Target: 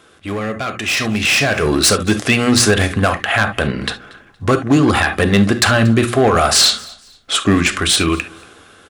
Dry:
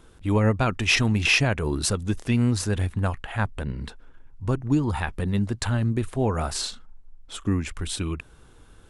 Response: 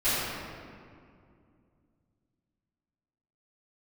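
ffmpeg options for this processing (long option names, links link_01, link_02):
-filter_complex "[0:a]bandreject=frequency=60:width_type=h:width=6,bandreject=frequency=120:width_type=h:width=6,bandreject=frequency=180:width_type=h:width=6,bandreject=frequency=240:width_type=h:width=6,bandreject=frequency=300:width_type=h:width=6,bandreject=frequency=360:width_type=h:width=6,asplit=2[link_01][link_02];[1:a]atrim=start_sample=2205,atrim=end_sample=3528[link_03];[link_02][link_03]afir=irnorm=-1:irlink=0,volume=-19dB[link_04];[link_01][link_04]amix=inputs=2:normalize=0,asplit=2[link_05][link_06];[link_06]highpass=frequency=720:poles=1,volume=15dB,asoftclip=type=tanh:threshold=-6.5dB[link_07];[link_05][link_07]amix=inputs=2:normalize=0,lowpass=frequency=4900:poles=1,volume=-6dB,acrossover=split=4900[link_08][link_09];[link_08]alimiter=limit=-15dB:level=0:latency=1:release=134[link_10];[link_10][link_09]amix=inputs=2:normalize=0,volume=19dB,asoftclip=hard,volume=-19dB,asuperstop=centerf=930:order=4:qfactor=5.8,aecho=1:1:233|466:0.0668|0.0201,dynaudnorm=framelen=410:gausssize=7:maxgain=11.5dB,highpass=76,volume=1.5dB"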